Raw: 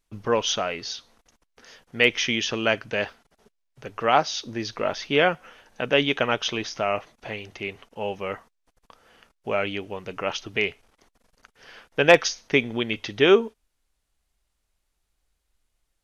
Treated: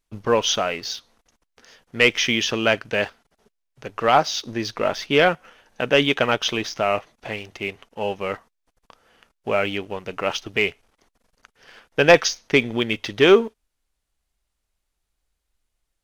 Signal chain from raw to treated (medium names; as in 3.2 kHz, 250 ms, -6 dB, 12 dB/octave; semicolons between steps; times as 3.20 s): waveshaping leveller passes 1